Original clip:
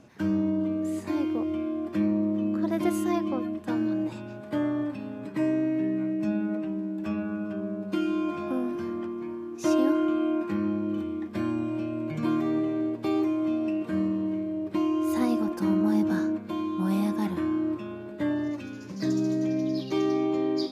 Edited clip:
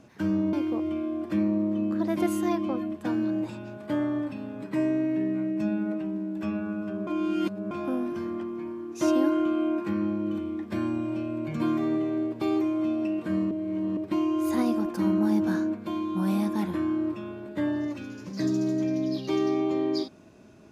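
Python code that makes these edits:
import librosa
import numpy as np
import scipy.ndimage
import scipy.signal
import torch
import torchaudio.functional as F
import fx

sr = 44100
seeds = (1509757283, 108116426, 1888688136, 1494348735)

y = fx.edit(x, sr, fx.cut(start_s=0.53, length_s=0.63),
    fx.reverse_span(start_s=7.7, length_s=0.64),
    fx.reverse_span(start_s=14.14, length_s=0.46), tone=tone)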